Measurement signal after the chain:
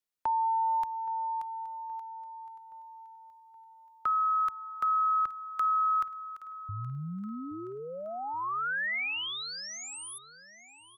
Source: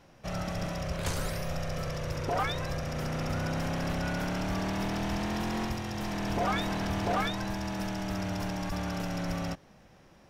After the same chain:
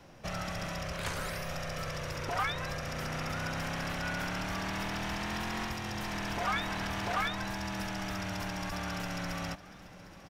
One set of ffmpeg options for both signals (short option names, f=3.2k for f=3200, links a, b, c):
-filter_complex "[0:a]acrossover=split=150|1000|2800[a][b][c][d];[a]acompressor=threshold=-45dB:ratio=4[e];[b]acompressor=threshold=-45dB:ratio=4[f];[c]acompressor=threshold=-30dB:ratio=4[g];[d]acompressor=threshold=-47dB:ratio=4[h];[e][f][g][h]amix=inputs=4:normalize=0,aecho=1:1:822|1644|2466|3288|4110:0.119|0.0642|0.0347|0.0187|0.0101,volume=3dB"